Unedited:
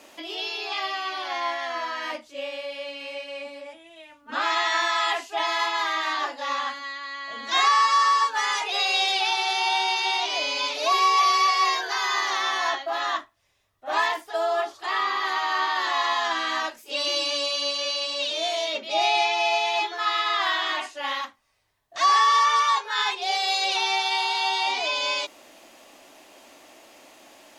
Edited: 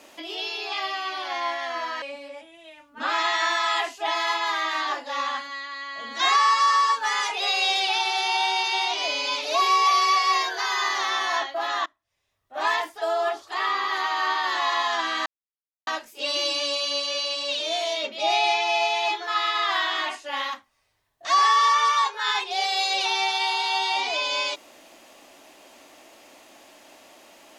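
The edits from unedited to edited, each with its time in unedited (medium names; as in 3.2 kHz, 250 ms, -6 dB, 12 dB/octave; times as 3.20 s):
2.02–3.34 s: delete
13.18–14.07 s: fade in, from -23.5 dB
16.58 s: insert silence 0.61 s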